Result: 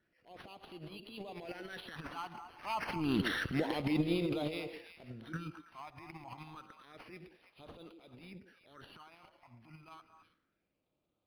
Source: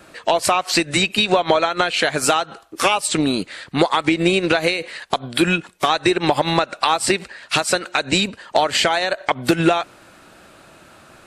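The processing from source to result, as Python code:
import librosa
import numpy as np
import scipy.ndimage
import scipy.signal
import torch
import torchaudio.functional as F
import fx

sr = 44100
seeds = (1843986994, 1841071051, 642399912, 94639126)

p1 = fx.doppler_pass(x, sr, speed_mps=23, closest_m=2.5, pass_at_s=3.32)
p2 = fx.over_compress(p1, sr, threshold_db=-26.0, ratio=-1.0)
p3 = fx.transient(p2, sr, attack_db=-10, sustain_db=12)
p4 = fx.phaser_stages(p3, sr, stages=8, low_hz=450.0, high_hz=1700.0, hz=0.29, feedback_pct=25)
p5 = p4 + fx.echo_stepped(p4, sr, ms=109, hz=370.0, octaves=1.4, feedback_pct=70, wet_db=-5.0, dry=0)
y = np.interp(np.arange(len(p5)), np.arange(len(p5))[::6], p5[::6])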